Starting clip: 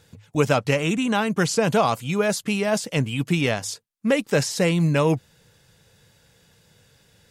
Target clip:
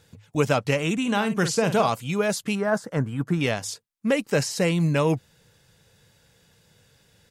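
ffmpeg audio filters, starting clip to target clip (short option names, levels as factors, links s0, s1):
-filter_complex "[0:a]asplit=3[s0][s1][s2];[s0]afade=t=out:st=1.04:d=0.02[s3];[s1]asplit=2[s4][s5];[s5]adelay=49,volume=0.316[s6];[s4][s6]amix=inputs=2:normalize=0,afade=t=in:st=1.04:d=0.02,afade=t=out:st=1.88:d=0.02[s7];[s2]afade=t=in:st=1.88:d=0.02[s8];[s3][s7][s8]amix=inputs=3:normalize=0,asettb=1/sr,asplit=3[s9][s10][s11];[s9]atrim=end=2.554[s12];[s10]atrim=start=2.55:end=3.41,asetpts=PTS-STARTPTS,afade=t=in:d=0.004:c=qsin,afade=t=out:st=0.856:d=0.004:c=qsin,highshelf=f=2000:t=q:w=3:g=-9.5[s13];[s11]atrim=start=3.406[s14];[s12][s13]acrossfade=d=0.004:c1=hsin:c2=qsin[s15];[s15][s14]acrossfade=d=0.004:c1=qsin:c2=hsin,asettb=1/sr,asplit=3[s16][s17][s18];[s16]atrim=end=4.134[s19];[s17]atrim=start=4.13:end=4.7,asetpts=PTS-STARTPTS,afade=t=in:d=0.004:c=qsin,afade=t=out:st=0.566:d=0.004:c=qsin,bandreject=f=3500:w=10[s20];[s18]atrim=start=4.696[s21];[s19][s20]acrossfade=d=0.004:c1=hsin:c2=qsin[s22];[s22][s21]acrossfade=d=0.004:c1=qsin:c2=hsin,volume=0.794"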